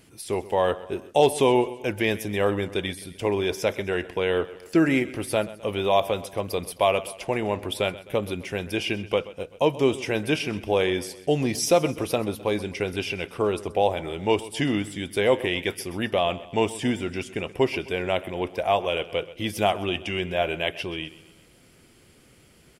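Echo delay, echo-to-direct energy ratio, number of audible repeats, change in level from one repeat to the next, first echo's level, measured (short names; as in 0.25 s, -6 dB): 0.129 s, -16.0 dB, 3, -5.5 dB, -17.5 dB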